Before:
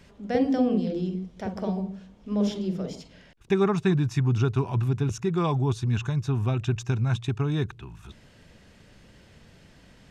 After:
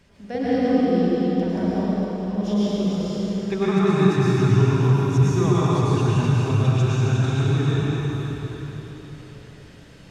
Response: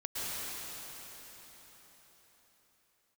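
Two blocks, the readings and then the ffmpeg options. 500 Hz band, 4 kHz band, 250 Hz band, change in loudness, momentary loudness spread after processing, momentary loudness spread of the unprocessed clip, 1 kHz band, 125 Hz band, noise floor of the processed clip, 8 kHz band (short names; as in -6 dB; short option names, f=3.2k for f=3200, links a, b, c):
+6.0 dB, +6.5 dB, +6.0 dB, +6.0 dB, 12 LU, 10 LU, +6.5 dB, +6.5 dB, -45 dBFS, n/a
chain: -filter_complex "[1:a]atrim=start_sample=2205,asetrate=48510,aresample=44100[a];[0:a][a]afir=irnorm=-1:irlink=0,volume=1.5dB"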